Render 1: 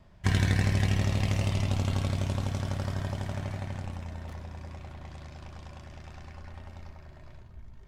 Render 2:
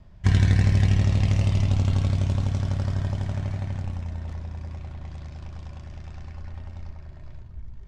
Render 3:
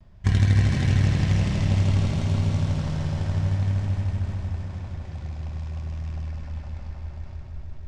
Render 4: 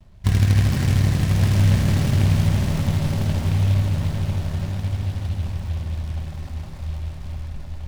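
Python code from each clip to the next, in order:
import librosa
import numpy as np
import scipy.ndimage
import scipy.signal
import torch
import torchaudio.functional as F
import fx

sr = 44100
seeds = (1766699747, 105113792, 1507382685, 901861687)

y1 = scipy.signal.sosfilt(scipy.signal.cheby1(2, 1.0, 7000.0, 'lowpass', fs=sr, output='sos'), x)
y1 = fx.low_shelf(y1, sr, hz=180.0, db=10.5)
y2 = fx.echo_heads(y1, sr, ms=154, heads='all three', feedback_pct=61, wet_db=-8)
y2 = fx.vibrato(y2, sr, rate_hz=0.55, depth_cents=30.0)
y2 = y2 * librosa.db_to_amplitude(-1.5)
y3 = y2 + 10.0 ** (-3.0 / 20.0) * np.pad(y2, (int(1167 * sr / 1000.0), 0))[:len(y2)]
y3 = fx.noise_mod_delay(y3, sr, seeds[0], noise_hz=2700.0, depth_ms=0.071)
y3 = y3 * librosa.db_to_amplitude(2.0)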